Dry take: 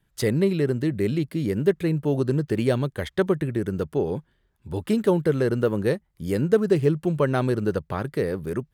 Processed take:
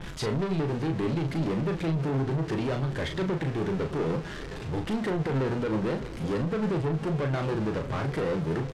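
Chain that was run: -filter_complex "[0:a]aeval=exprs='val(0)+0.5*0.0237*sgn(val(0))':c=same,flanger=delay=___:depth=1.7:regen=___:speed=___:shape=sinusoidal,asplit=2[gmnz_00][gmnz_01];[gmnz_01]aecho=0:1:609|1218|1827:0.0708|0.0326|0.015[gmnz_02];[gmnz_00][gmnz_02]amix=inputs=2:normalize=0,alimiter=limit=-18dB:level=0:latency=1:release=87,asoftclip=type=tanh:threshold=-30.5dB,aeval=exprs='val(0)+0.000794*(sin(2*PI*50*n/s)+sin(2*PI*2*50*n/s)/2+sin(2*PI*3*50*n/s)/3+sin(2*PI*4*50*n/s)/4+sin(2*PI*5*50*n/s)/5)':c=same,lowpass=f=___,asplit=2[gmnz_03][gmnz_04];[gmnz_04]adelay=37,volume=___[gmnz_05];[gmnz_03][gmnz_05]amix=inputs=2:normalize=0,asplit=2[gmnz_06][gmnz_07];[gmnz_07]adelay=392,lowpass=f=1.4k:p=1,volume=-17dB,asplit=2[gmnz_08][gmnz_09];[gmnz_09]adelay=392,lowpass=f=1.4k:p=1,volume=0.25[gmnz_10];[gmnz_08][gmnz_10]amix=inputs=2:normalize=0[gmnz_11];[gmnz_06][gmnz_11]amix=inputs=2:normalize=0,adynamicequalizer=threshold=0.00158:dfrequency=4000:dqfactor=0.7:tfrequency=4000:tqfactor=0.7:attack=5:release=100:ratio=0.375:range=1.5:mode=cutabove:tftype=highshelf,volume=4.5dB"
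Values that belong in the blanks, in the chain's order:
5.8, 55, 1.2, 6.6k, -6dB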